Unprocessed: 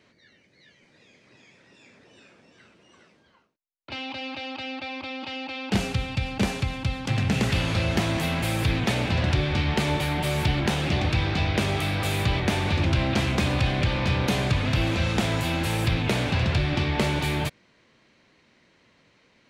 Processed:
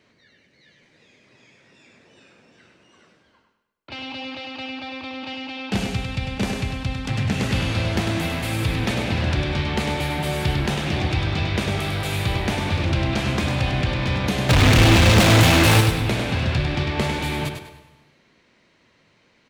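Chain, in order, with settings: 14.49–15.81 sample leveller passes 5; feedback echo 0.1 s, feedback 32%, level -6 dB; plate-style reverb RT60 1.2 s, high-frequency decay 0.85×, pre-delay 0.115 s, DRR 15 dB

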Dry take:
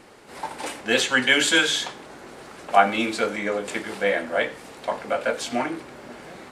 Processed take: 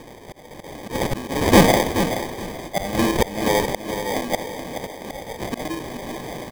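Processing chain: sample-and-hold 32×; auto swell 0.338 s; feedback echo 0.427 s, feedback 24%, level -9 dB; gain +8 dB

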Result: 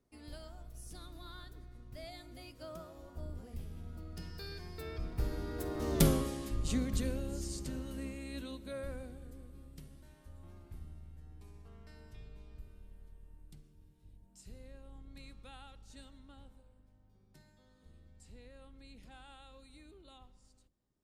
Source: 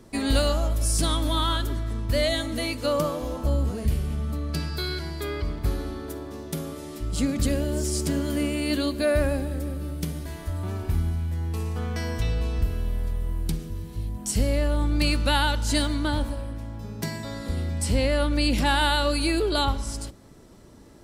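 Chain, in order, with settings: octaver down 2 oct, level -3 dB; Doppler pass-by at 6.02, 28 m/s, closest 4 m; gain +5 dB

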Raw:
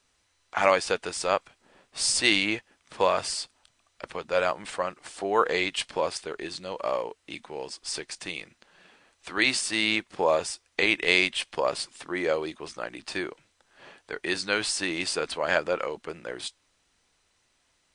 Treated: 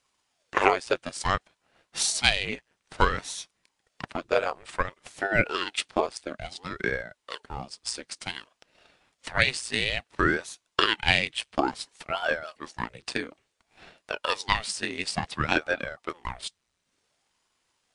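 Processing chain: transient shaper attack +9 dB, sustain -4 dB; ring modulator with a swept carrier 570 Hz, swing 90%, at 0.57 Hz; gain -1.5 dB

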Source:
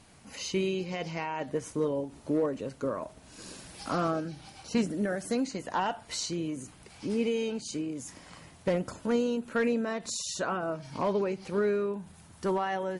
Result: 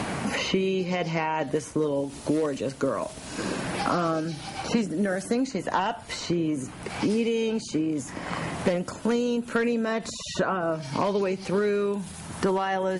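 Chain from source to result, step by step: three-band squash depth 100%; gain +4 dB

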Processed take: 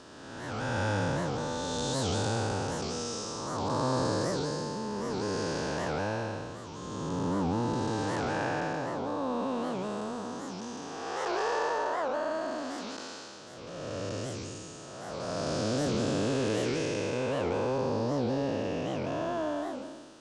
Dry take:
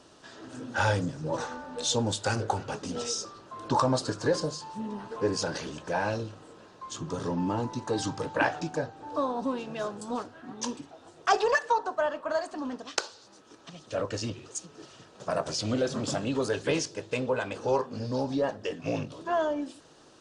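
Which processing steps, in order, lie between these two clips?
time blur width 0.57 s; record warp 78 rpm, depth 250 cents; gain +4 dB

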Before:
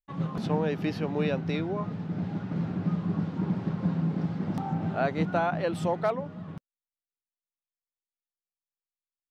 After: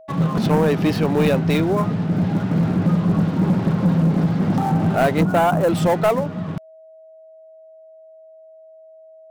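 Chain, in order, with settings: switching dead time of 0.053 ms; 5.21–5.69 band shelf 3000 Hz -13.5 dB; sample leveller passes 2; whine 640 Hz -48 dBFS; gain +5.5 dB

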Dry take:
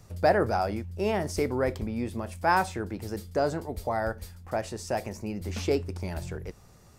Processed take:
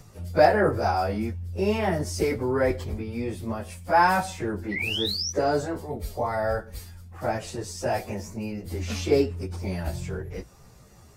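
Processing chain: painted sound rise, 2.95–3.32, 1900–6100 Hz -32 dBFS; plain phase-vocoder stretch 1.6×; hard clip -12.5 dBFS, distortion -40 dB; gain +5.5 dB

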